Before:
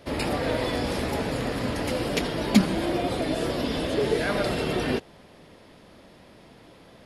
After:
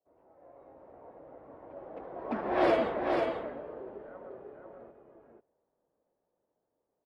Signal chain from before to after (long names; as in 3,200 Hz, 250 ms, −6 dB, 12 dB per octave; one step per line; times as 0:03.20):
source passing by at 0:02.66, 32 m/s, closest 2.9 metres
three-way crossover with the lows and the highs turned down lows −18 dB, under 440 Hz, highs −13 dB, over 2,000 Hz
low-pass that shuts in the quiet parts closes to 650 Hz, open at −26 dBFS
automatic gain control gain up to 8 dB
single-tap delay 492 ms −4 dB